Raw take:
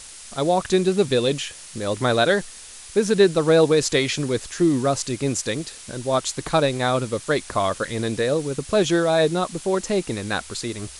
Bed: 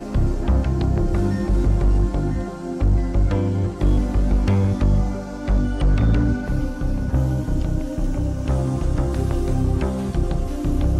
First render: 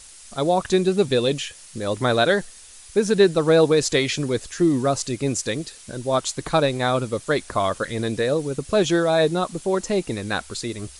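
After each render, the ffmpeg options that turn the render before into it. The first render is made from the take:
-af "afftdn=nr=6:nf=-41"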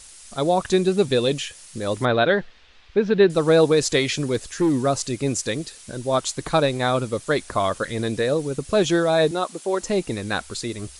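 -filter_complex "[0:a]asettb=1/sr,asplit=3[s0][s1][s2];[s0]atrim=end=2.054[s3];[s1]atrim=start=2.05:end=3.3,asetpts=PTS-STARTPTS,afade=t=in:d=0.004:c=qsin,afade=t=out:st=1.246:d=0.004:c=qsin,lowpass=f=3600:w=0.5412,lowpass=f=3600:w=1.3066[s4];[s2]atrim=start=3.296[s5];[s3][s4]acrossfade=d=0.004:c1=hsin:c2=qsin[s6];[s6][s5]acrossfade=d=0.004:c1=qsin:c2=hsin,asettb=1/sr,asplit=3[s7][s8][s9];[s7]atrim=end=4.144[s10];[s8]atrim=start=4.14:end=4.79,asetpts=PTS-STARTPTS,afade=t=in:d=0.004:c=qsin,afade=t=out:st=0.646:d=0.004:c=qsin,asoftclip=type=hard:threshold=0.178[s11];[s9]atrim=start=4.786[s12];[s10][s11]acrossfade=d=0.004:c1=hsin:c2=qsin[s13];[s13][s12]acrossfade=d=0.004:c1=qsin:c2=hsin,asettb=1/sr,asplit=3[s14][s15][s16];[s14]atrim=end=9.314[s17];[s15]atrim=start=9.31:end=9.82,asetpts=PTS-STARTPTS,afade=t=in:d=0.004:c=qsin,afade=t=out:st=0.506:d=0.004:c=qsin,highpass=310[s18];[s16]atrim=start=9.816[s19];[s17][s18]acrossfade=d=0.004:c1=hsin:c2=qsin[s20];[s20][s19]acrossfade=d=0.004:c1=qsin:c2=hsin"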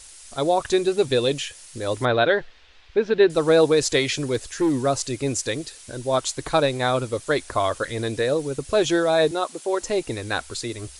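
-af "equalizer=f=190:t=o:w=0.36:g=-14.5,bandreject=f=1200:w=23"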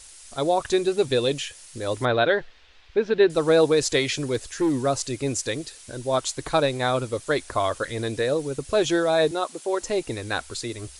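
-af "volume=0.841"

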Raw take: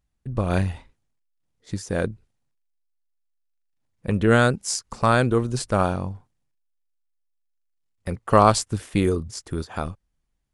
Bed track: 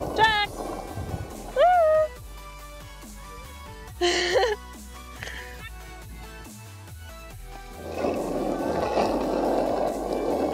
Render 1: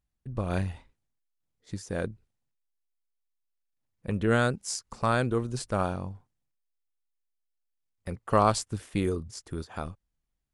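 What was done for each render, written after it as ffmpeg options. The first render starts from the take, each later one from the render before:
-af "volume=0.447"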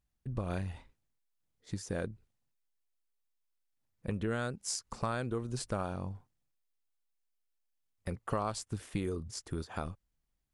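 -af "acompressor=threshold=0.0251:ratio=4"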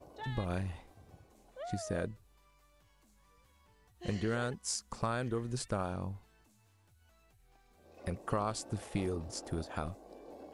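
-filter_complex "[1:a]volume=0.0531[s0];[0:a][s0]amix=inputs=2:normalize=0"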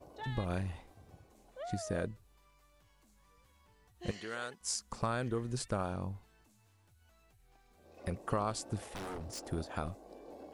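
-filter_complex "[0:a]asettb=1/sr,asplit=3[s0][s1][s2];[s0]atrim=end=4.114[s3];[s1]atrim=start=4.11:end=4.61,asetpts=PTS-STARTPTS,afade=t=in:d=0.004:c=qsin,afade=t=out:st=0.496:d=0.004:c=qsin,highpass=f=1100:p=1[s4];[s2]atrim=start=4.606[s5];[s3][s4]acrossfade=d=0.004:c1=hsin:c2=qsin[s6];[s6][s5]acrossfade=d=0.004:c1=qsin:c2=hsin,asettb=1/sr,asplit=3[s7][s8][s9];[s7]atrim=end=8.904[s10];[s8]atrim=start=8.9:end=9.42,asetpts=PTS-STARTPTS,afade=t=in:d=0.004:c=qsin,afade=t=out:st=0.516:d=0.004:c=qsin,aeval=exprs='0.0141*(abs(mod(val(0)/0.0141+3,4)-2)-1)':c=same[s11];[s9]atrim=start=9.416[s12];[s10][s11]acrossfade=d=0.004:c1=hsin:c2=qsin[s13];[s13][s12]acrossfade=d=0.004:c1=qsin:c2=hsin"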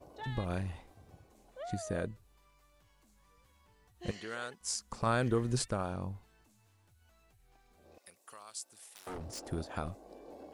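-filter_complex "[0:a]asettb=1/sr,asplit=3[s0][s1][s2];[s0]atrim=end=1.714[s3];[s1]atrim=start=1.71:end=2.12,asetpts=PTS-STARTPTS,afade=t=in:d=0.004:c=qsin,afade=t=out:st=0.406:d=0.004:c=qsin,asuperstop=centerf=5300:order=4:qfactor=7.8[s4];[s2]atrim=start=2.116[s5];[s3][s4]acrossfade=d=0.004:c1=hsin:c2=qsin[s6];[s6][s5]acrossfade=d=0.004:c1=qsin:c2=hsin,asplit=3[s7][s8][s9];[s7]afade=t=out:st=5.05:d=0.02[s10];[s8]acontrast=30,afade=t=in:st=5.05:d=0.02,afade=t=out:st=5.64:d=0.02[s11];[s9]afade=t=in:st=5.64:d=0.02[s12];[s10][s11][s12]amix=inputs=3:normalize=0,asettb=1/sr,asplit=3[s13][s14][s15];[s13]atrim=end=7.984[s16];[s14]atrim=start=7.98:end=9.07,asetpts=PTS-STARTPTS,afade=t=in:d=0.004:c=qsin,afade=t=out:st=1.086:d=0.004:c=qsin,aderivative[s17];[s15]atrim=start=9.066[s18];[s16][s17]acrossfade=d=0.004:c1=hsin:c2=qsin[s19];[s19][s18]acrossfade=d=0.004:c1=qsin:c2=hsin"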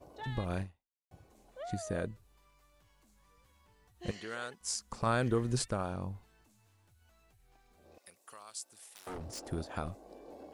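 -filter_complex "[0:a]asplit=2[s0][s1];[s0]atrim=end=1.11,asetpts=PTS-STARTPTS,afade=t=out:st=0.62:d=0.49:c=exp[s2];[s1]atrim=start=1.11,asetpts=PTS-STARTPTS,afade=t=in:d=0.004:c=hsin[s3];[s2][s3]concat=n=2:v=0:a=1"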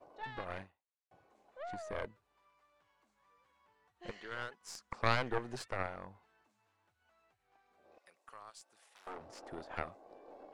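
-af "bandpass=f=1100:t=q:w=0.71:csg=0,aeval=exprs='0.119*(cos(1*acos(clip(val(0)/0.119,-1,1)))-cos(1*PI/2))+0.0531*(cos(4*acos(clip(val(0)/0.119,-1,1)))-cos(4*PI/2))':c=same"

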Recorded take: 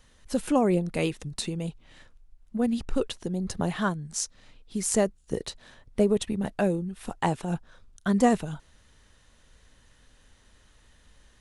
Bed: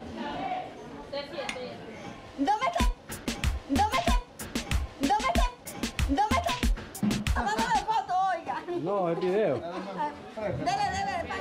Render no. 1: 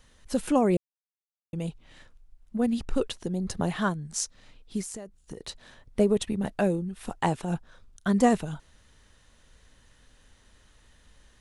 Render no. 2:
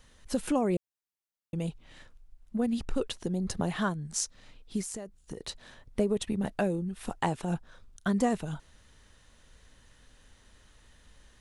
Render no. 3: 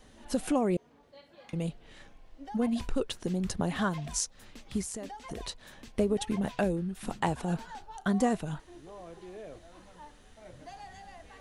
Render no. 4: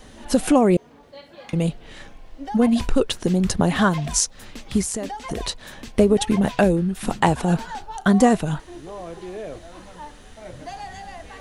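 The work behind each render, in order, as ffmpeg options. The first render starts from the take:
-filter_complex "[0:a]asettb=1/sr,asplit=3[s0][s1][s2];[s0]atrim=end=4.814[s3];[s1]atrim=start=4.81:end=5.49,asetpts=PTS-STARTPTS,afade=t=in:d=0.004:c=qsin,afade=t=out:st=0.676:d=0.004:c=qsin,acompressor=threshold=0.0178:ratio=12:attack=3.2:release=140:knee=1:detection=peak[s4];[s2]atrim=start=5.486[s5];[s3][s4]acrossfade=d=0.004:c1=hsin:c2=qsin[s6];[s6][s5]acrossfade=d=0.004:c1=qsin:c2=hsin,asplit=3[s7][s8][s9];[s7]atrim=end=0.77,asetpts=PTS-STARTPTS,afade=t=out:st=0.766:d=0.004:c=hsin[s10];[s8]atrim=start=0.77:end=1.53,asetpts=PTS-STARTPTS,volume=0[s11];[s9]atrim=start=1.53,asetpts=PTS-STARTPTS,afade=t=in:d=0.004:c=hsin[s12];[s10][s11][s12]concat=n=3:v=0:a=1"
-af "acompressor=threshold=0.0447:ratio=2"
-filter_complex "[1:a]volume=0.112[s0];[0:a][s0]amix=inputs=2:normalize=0"
-af "volume=3.76,alimiter=limit=0.794:level=0:latency=1"

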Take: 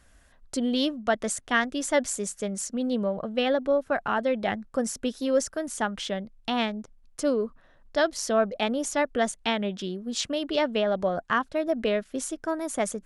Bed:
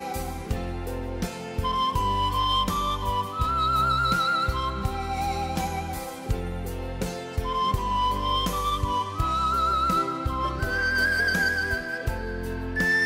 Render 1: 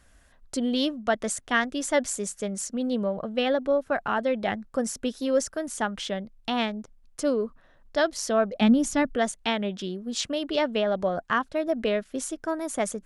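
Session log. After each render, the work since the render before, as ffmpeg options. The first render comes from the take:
-filter_complex "[0:a]asettb=1/sr,asplit=3[s0][s1][s2];[s0]atrim=end=8.614[s3];[s1]atrim=start=8.61:end=9.15,asetpts=PTS-STARTPTS,afade=t=in:d=0.004:c=qsin,afade=t=out:st=0.536:d=0.004:c=qsin,lowshelf=f=310:t=q:w=1.5:g=11[s4];[s2]atrim=start=9.146[s5];[s3][s4]acrossfade=d=0.004:c1=hsin:c2=qsin[s6];[s6][s5]acrossfade=d=0.004:c1=qsin:c2=hsin"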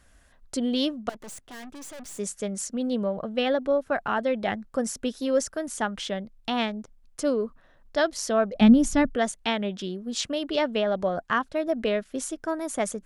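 -filter_complex "[0:a]asettb=1/sr,asplit=3[s0][s1][s2];[s0]atrim=end=1.094[s3];[s1]atrim=start=1.09:end=2.19,asetpts=PTS-STARTPTS,afade=t=in:d=0.004:c=qsin,afade=t=out:st=1.096:d=0.004:c=qsin,aeval=exprs='(tanh(100*val(0)+0.55)-tanh(0.55))/100':c=same[s4];[s2]atrim=start=2.186[s5];[s3][s4]acrossfade=d=0.004:c1=hsin:c2=qsin[s6];[s6][s5]acrossfade=d=0.004:c1=qsin:c2=hsin,asettb=1/sr,asplit=3[s7][s8][s9];[s7]atrim=end=8.554[s10];[s8]atrim=start=8.55:end=9.1,asetpts=PTS-STARTPTS,afade=t=in:d=0.004:c=qsin,afade=t=out:st=0.546:d=0.004:c=qsin,lowshelf=f=160:g=12[s11];[s9]atrim=start=9.096[s12];[s10][s11]acrossfade=d=0.004:c1=hsin:c2=qsin[s13];[s13][s12]acrossfade=d=0.004:c1=qsin:c2=hsin"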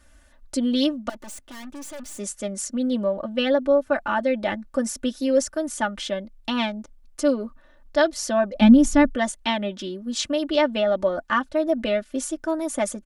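-af "aecho=1:1:3.4:0.87"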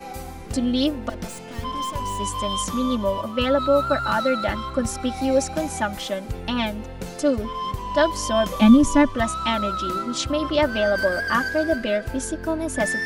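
-filter_complex "[1:a]volume=0.668[s0];[0:a][s0]amix=inputs=2:normalize=0"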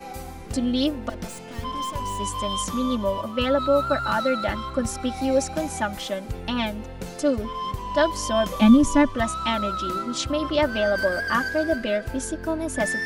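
-af "volume=0.841"

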